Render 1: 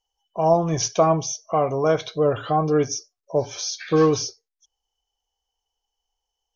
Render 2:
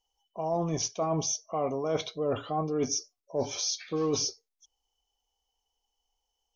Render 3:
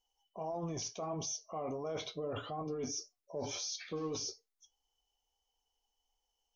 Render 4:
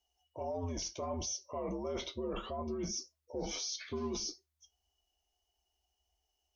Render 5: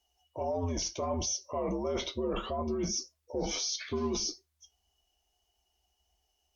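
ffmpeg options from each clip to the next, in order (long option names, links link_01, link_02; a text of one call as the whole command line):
ffmpeg -i in.wav -af "equalizer=frequency=125:width_type=o:width=0.33:gain=-8,equalizer=frequency=250:width_type=o:width=0.33:gain=7,equalizer=frequency=1600:width_type=o:width=0.33:gain=-10,areverse,acompressor=threshold=-26dB:ratio=10,areverse" out.wav
ffmpeg -i in.wav -af "alimiter=level_in=5dB:limit=-24dB:level=0:latency=1:release=12,volume=-5dB,flanger=delay=8:depth=3.9:regen=-60:speed=1.6:shape=sinusoidal,volume=1.5dB" out.wav
ffmpeg -i in.wav -af "afreqshift=-76,volume=1dB" out.wav
ffmpeg -i in.wav -af "volume=5.5dB" -ar 48000 -c:a libopus -b:a 64k out.opus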